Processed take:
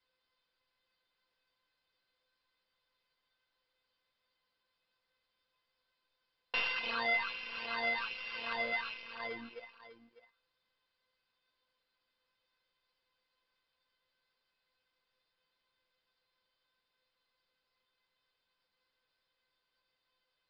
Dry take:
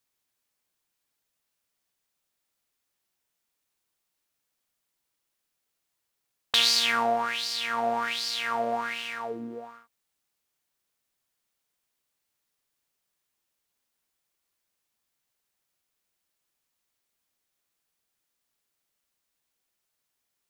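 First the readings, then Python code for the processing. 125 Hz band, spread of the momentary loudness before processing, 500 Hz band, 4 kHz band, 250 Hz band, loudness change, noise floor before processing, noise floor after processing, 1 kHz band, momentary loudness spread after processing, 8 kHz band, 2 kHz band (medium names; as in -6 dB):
under -10 dB, 15 LU, -12.0 dB, -15.0 dB, -13.0 dB, -9.5 dB, -81 dBFS, -84 dBFS, -12.5 dB, 13 LU, under -35 dB, -3.5 dB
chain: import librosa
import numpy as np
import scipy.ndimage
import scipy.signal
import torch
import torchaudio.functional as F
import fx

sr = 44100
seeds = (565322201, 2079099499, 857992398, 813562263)

p1 = np.r_[np.sort(x[:len(x) // 16 * 16].reshape(-1, 16), axis=1).ravel(), x[len(x) // 16 * 16:]]
p2 = scipy.signal.sosfilt(scipy.signal.butter(2, 57.0, 'highpass', fs=sr, output='sos'), p1)
p3 = fx.dereverb_blind(p2, sr, rt60_s=1.3)
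p4 = fx.dynamic_eq(p3, sr, hz=3500.0, q=1.1, threshold_db=-42.0, ratio=4.0, max_db=4)
p5 = fx.leveller(p4, sr, passes=2)
p6 = fx.dmg_noise_colour(p5, sr, seeds[0], colour='white', level_db=-66.0)
p7 = (np.mod(10.0 ** (20.0 / 20.0) * p6 + 1.0, 2.0) - 1.0) / 10.0 ** (20.0 / 20.0)
p8 = p6 + F.gain(torch.from_numpy(p7), -10.0).numpy()
p9 = scipy.signal.sosfilt(scipy.signal.cheby1(6, 3, 5000.0, 'lowpass', fs=sr, output='sos'), p8)
p10 = fx.comb_fb(p9, sr, f0_hz=510.0, decay_s=0.19, harmonics='all', damping=0.0, mix_pct=90)
p11 = p10 + fx.echo_single(p10, sr, ms=600, db=-13.5, dry=0)
y = F.gain(torch.from_numpy(p11), 1.0).numpy()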